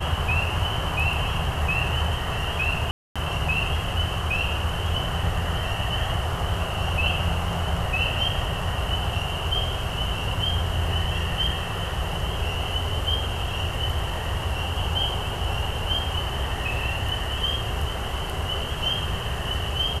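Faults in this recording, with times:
2.91–3.16 s: dropout 246 ms

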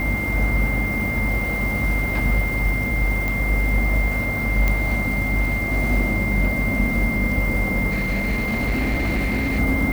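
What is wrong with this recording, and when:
buzz 50 Hz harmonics 38 -26 dBFS
whine 2.1 kHz -24 dBFS
3.28 s: pop
4.68 s: pop -7 dBFS
7.89–9.60 s: clipped -18 dBFS

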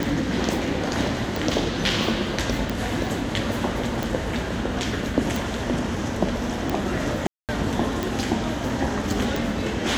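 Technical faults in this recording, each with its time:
tick 45 rpm
7.27–7.49 s: dropout 218 ms

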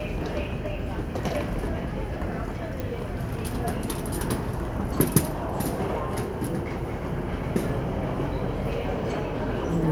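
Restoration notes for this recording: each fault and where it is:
2.80 s: pop -18 dBFS

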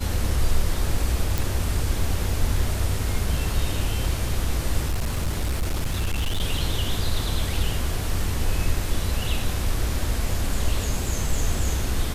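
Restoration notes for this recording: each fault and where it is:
1.38 s: pop
4.89–6.42 s: clipped -20 dBFS

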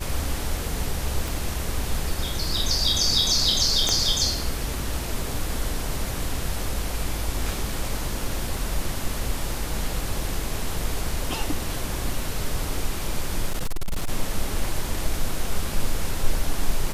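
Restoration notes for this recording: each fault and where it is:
1.28 s: pop
3.89 s: pop -7 dBFS
13.49–14.09 s: clipped -20.5 dBFS

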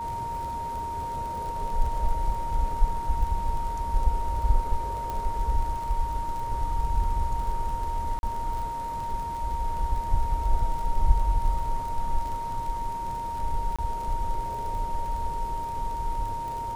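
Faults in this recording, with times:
crackle 30 per s -33 dBFS
whine 930 Hz -30 dBFS
5.10 s: pop
8.19–8.23 s: dropout 41 ms
13.76–13.79 s: dropout 26 ms

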